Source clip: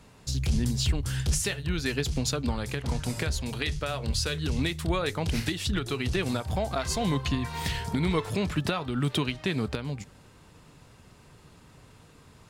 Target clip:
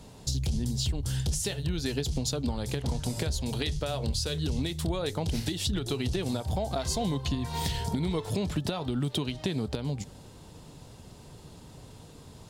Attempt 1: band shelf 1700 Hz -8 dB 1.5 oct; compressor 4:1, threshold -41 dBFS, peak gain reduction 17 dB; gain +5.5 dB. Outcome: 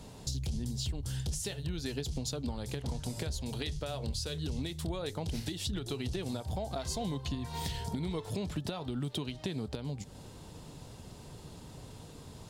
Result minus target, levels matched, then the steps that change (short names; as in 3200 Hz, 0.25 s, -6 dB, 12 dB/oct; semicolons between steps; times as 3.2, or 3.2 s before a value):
compressor: peak gain reduction +6 dB
change: compressor 4:1, threshold -33 dBFS, peak gain reduction 11 dB